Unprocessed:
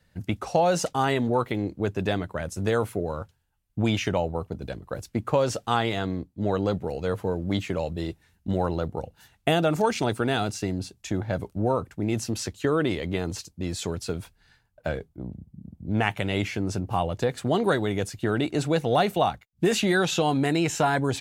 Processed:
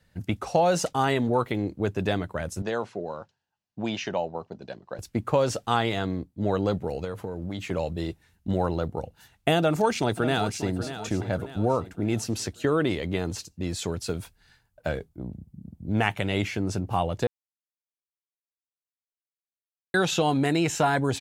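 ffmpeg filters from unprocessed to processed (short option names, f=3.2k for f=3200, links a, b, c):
-filter_complex "[0:a]asettb=1/sr,asplit=3[a][b][c];[a]atrim=end=2.624[d];[b]atrim=start=2.62:end=4.99,asetpts=PTS-STARTPTS,afade=t=in:d=0.004:c=qsin,afade=t=out:st=2.366:d=0.004:c=qsin,highpass=240,equalizer=f=290:t=q:w=4:g=-7,equalizer=f=460:t=q:w=4:g=-5,equalizer=f=1.3k:t=q:w=4:g=-6,equalizer=f=2.2k:t=q:w=4:g=-6,equalizer=f=3.4k:t=q:w=4:g=-4,lowpass=f=5.9k:w=0.5412,lowpass=f=5.9k:w=1.3066[e];[c]atrim=start=4.986[f];[d][e]acrossfade=d=0.004:c1=hsin:c2=qsin[g];[g][f]acrossfade=d=0.004:c1=qsin:c2=hsin,asettb=1/sr,asplit=3[h][i][j];[h]atrim=end=7.044[k];[i]atrim=start=7.04:end=7.71,asetpts=PTS-STARTPTS,afade=t=in:d=0.004:c=qsin,afade=t=out:st=0.666:d=0.004:c=qsin,acompressor=threshold=-28dB:ratio=6:attack=3.2:release=140:knee=1:detection=peak[l];[j]atrim=start=7.706[m];[k][l]acrossfade=d=0.004:c1=hsin:c2=qsin[n];[n][m]acrossfade=d=0.004:c1=qsin:c2=hsin,asplit=2[o][p];[p]afade=t=in:st=9.58:d=0.01,afade=t=out:st=10.74:d=0.01,aecho=0:1:590|1180|1770|2360|2950:0.266073|0.119733|0.0538797|0.0242459|0.0109106[q];[o][q]amix=inputs=2:normalize=0,asettb=1/sr,asplit=3[r][s][t];[r]atrim=end=14.044[u];[s]atrim=start=14.04:end=16.07,asetpts=PTS-STARTPTS,afade=t=in:d=0.004:c=qsin,afade=t=out:st=2.026:d=0.004:c=qsin,highshelf=f=5.4k:g=4.5[v];[t]atrim=start=16.066[w];[u][v]acrossfade=d=0.004:c1=hsin:c2=qsin[x];[x][w]acrossfade=d=0.004:c1=qsin:c2=hsin,asplit=3[y][z][aa];[y]atrim=end=17.27,asetpts=PTS-STARTPTS,afade=t=out:st=17.266:d=0.004:c=hsin[ab];[z]atrim=start=17.27:end=19.94,asetpts=PTS-STARTPTS,volume=0[ac];[aa]atrim=start=19.94,asetpts=PTS-STARTPTS,afade=t=in:d=0.004:c=hsin[ad];[ab][ac][ad]concat=n=3:v=0:a=1"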